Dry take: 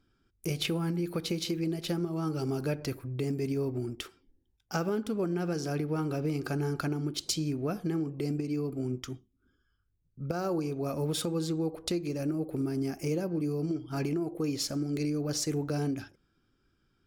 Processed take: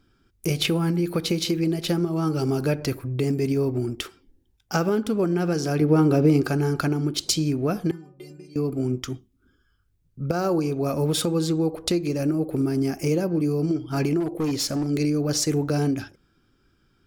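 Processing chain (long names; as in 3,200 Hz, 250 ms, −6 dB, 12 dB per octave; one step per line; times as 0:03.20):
0:05.81–0:06.43: parametric band 300 Hz +6.5 dB 2.7 octaves
0:07.91–0:08.56: stiff-string resonator 180 Hz, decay 0.35 s, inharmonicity 0.008
0:14.20–0:14.87: hard clipping −29 dBFS, distortion −27 dB
level +8 dB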